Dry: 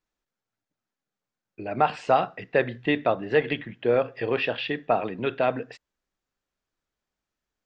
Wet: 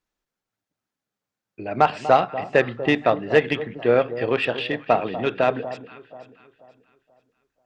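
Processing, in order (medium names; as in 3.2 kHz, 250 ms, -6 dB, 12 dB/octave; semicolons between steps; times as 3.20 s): echo whose repeats swap between lows and highs 242 ms, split 1.1 kHz, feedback 58%, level -11 dB; Chebyshev shaper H 7 -29 dB, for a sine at -7 dBFS; trim +4.5 dB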